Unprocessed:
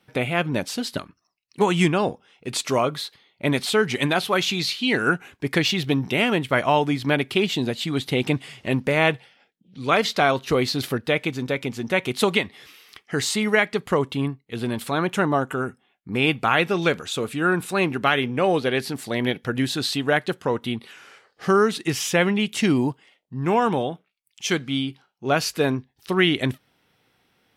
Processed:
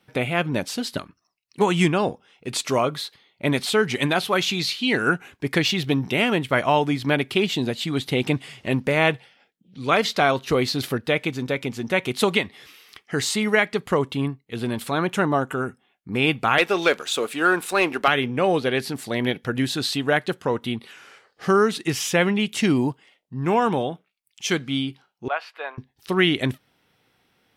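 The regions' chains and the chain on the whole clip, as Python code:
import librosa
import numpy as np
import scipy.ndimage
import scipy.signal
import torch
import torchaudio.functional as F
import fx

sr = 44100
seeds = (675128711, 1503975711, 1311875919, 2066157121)

y = fx.chain(x, sr, fx.highpass(hz=370.0, slope=12),
    fx.leveller(passes=1), at=(16.58, 18.08))
y = fx.chain(y, sr, fx.highpass(hz=690.0, slope=24),
    fx.air_absorb(metres=470.0), at=(25.28, 25.78))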